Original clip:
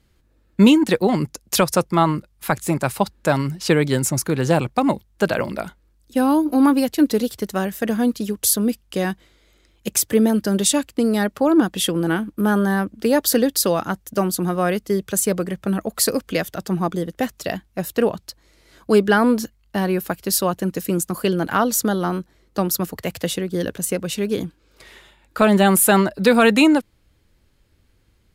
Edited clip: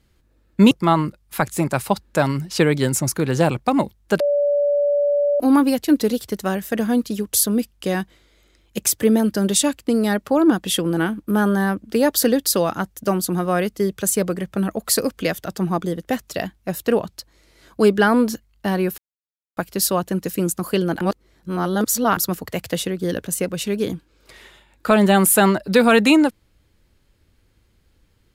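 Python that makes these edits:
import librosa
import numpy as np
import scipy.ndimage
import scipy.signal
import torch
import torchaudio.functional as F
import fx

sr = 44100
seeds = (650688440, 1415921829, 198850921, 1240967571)

y = fx.edit(x, sr, fx.cut(start_s=0.71, length_s=1.1),
    fx.bleep(start_s=5.3, length_s=1.2, hz=577.0, db=-15.0),
    fx.insert_silence(at_s=20.08, length_s=0.59),
    fx.reverse_span(start_s=21.52, length_s=1.16), tone=tone)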